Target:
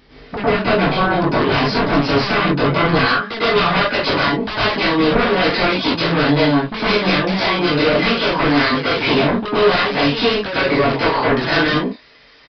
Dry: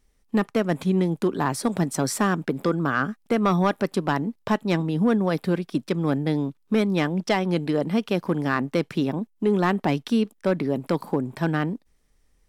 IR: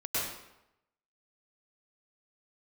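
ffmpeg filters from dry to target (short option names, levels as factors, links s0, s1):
-filter_complex "[0:a]asetnsamples=n=441:p=0,asendcmd='3.01 highpass f 1500',highpass=f=190:p=1,acompressor=threshold=0.0158:ratio=16,flanger=delay=19.5:depth=2.5:speed=0.68,aeval=exprs='0.0668*sin(PI/2*10*val(0)/0.0668)':c=same[s0];[1:a]atrim=start_sample=2205,afade=t=out:st=0.23:d=0.01,atrim=end_sample=10584[s1];[s0][s1]afir=irnorm=-1:irlink=0,aresample=11025,aresample=44100,volume=2.11"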